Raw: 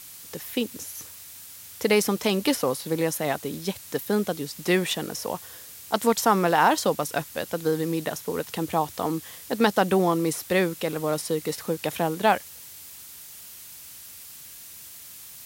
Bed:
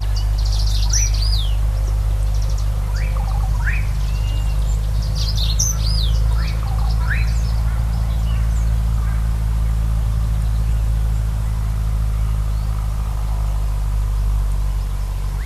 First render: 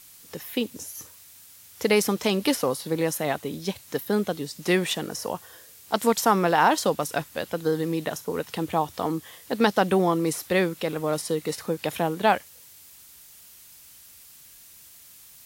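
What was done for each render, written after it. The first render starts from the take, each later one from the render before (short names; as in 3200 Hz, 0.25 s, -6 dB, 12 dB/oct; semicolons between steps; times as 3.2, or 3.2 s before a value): noise print and reduce 6 dB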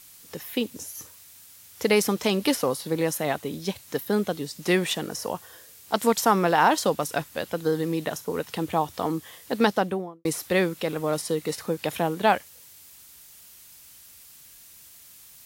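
9.61–10.25 studio fade out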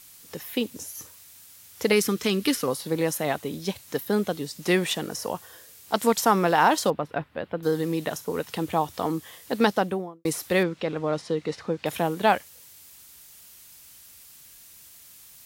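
1.92–2.68 band shelf 720 Hz -9.5 dB 1.1 oct; 6.9–7.63 air absorption 460 m; 10.63–11.86 air absorption 130 m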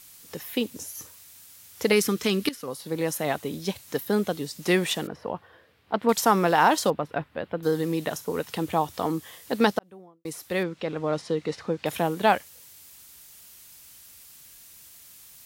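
2.49–3.51 fade in equal-power, from -16.5 dB; 5.07–6.09 air absorption 410 m; 9.79–11.14 fade in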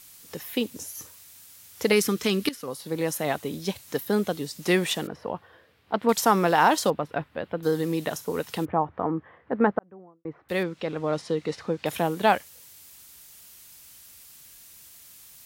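8.65–10.49 LPF 1700 Hz 24 dB/oct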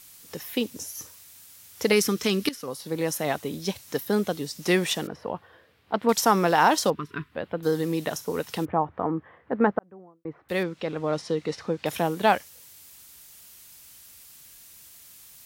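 6.95–7.32 spectral gain 450–950 Hz -27 dB; dynamic EQ 5600 Hz, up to +5 dB, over -54 dBFS, Q 4.5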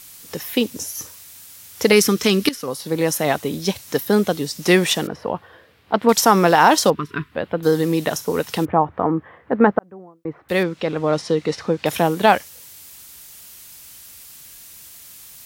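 gain +7.5 dB; limiter -1 dBFS, peak gain reduction 2 dB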